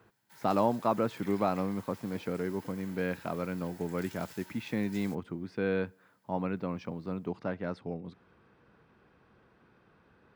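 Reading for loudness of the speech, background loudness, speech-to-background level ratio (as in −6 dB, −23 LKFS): −34.0 LKFS, −52.0 LKFS, 18.0 dB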